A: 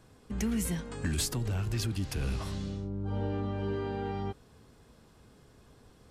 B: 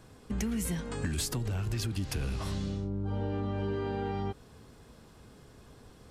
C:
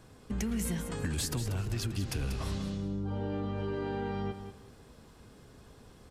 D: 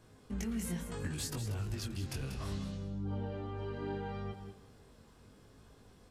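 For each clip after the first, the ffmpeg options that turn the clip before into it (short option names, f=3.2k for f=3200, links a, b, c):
-af "acompressor=threshold=-33dB:ratio=6,volume=4dB"
-af "aecho=1:1:188|376|564:0.335|0.0737|0.0162,volume=-1dB"
-af "flanger=delay=18.5:depth=4.2:speed=0.71,volume=-2dB"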